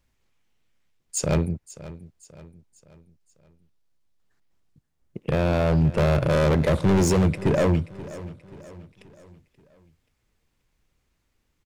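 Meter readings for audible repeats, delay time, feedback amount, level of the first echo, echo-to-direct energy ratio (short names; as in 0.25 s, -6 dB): 3, 0.531 s, 46%, -17.0 dB, -16.0 dB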